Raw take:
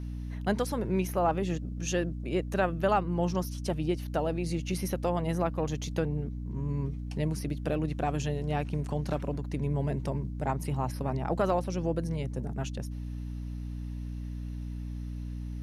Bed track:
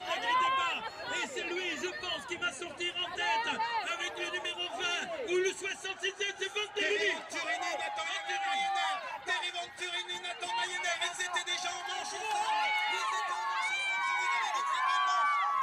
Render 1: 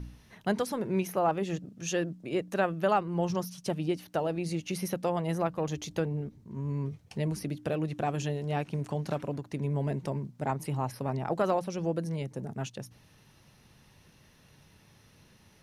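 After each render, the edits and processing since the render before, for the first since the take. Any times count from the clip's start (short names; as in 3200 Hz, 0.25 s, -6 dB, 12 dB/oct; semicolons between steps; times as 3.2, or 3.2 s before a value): de-hum 60 Hz, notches 5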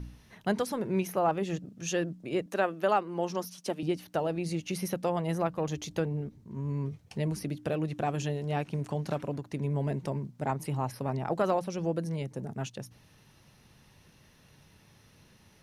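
2.46–3.83 HPF 220 Hz 24 dB/oct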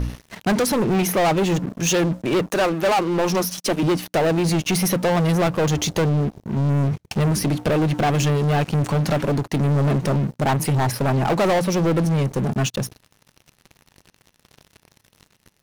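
sample leveller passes 5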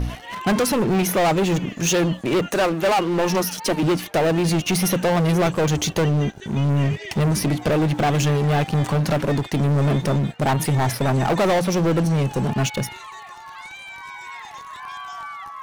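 add bed track -5 dB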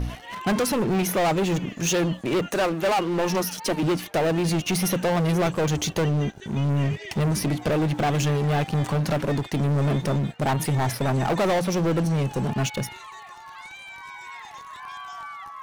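gain -3.5 dB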